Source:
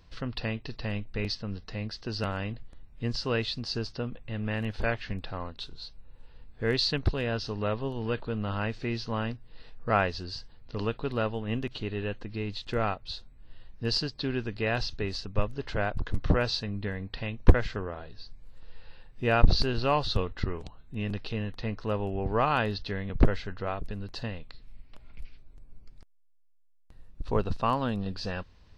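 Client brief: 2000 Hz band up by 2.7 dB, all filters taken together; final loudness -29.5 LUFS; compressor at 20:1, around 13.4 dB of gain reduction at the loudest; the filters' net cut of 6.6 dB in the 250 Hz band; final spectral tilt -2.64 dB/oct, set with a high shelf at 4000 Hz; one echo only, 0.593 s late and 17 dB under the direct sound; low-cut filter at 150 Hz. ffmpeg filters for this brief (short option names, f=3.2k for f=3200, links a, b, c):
-af "highpass=150,equalizer=f=250:t=o:g=-7.5,equalizer=f=2k:t=o:g=3,highshelf=f=4k:g=3,acompressor=threshold=-31dB:ratio=20,aecho=1:1:593:0.141,volume=8.5dB"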